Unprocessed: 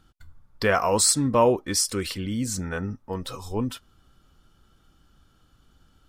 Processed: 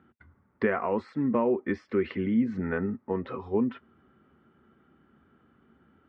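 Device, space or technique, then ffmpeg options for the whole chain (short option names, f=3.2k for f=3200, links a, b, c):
bass amplifier: -af "acompressor=threshold=-27dB:ratio=4,highpass=f=85:w=0.5412,highpass=f=85:w=1.3066,equalizer=f=110:t=q:w=4:g=-10,equalizer=f=230:t=q:w=4:g=9,equalizer=f=390:t=q:w=4:g=9,equalizer=f=2k:t=q:w=4:g=6,lowpass=f=2.2k:w=0.5412,lowpass=f=2.2k:w=1.3066"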